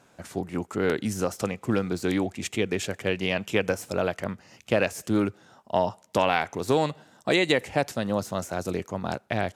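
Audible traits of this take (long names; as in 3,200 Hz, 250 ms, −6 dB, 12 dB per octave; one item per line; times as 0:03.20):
background noise floor −60 dBFS
spectral slope −5.0 dB per octave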